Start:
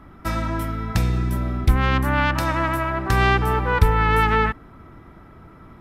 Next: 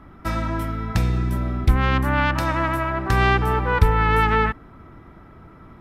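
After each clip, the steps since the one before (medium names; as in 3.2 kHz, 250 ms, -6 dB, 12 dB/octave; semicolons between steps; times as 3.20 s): treble shelf 6 kHz -5 dB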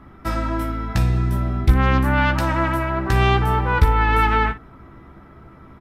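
early reflections 15 ms -6 dB, 57 ms -15 dB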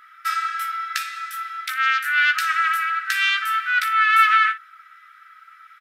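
brick-wall FIR high-pass 1.2 kHz; trim +6 dB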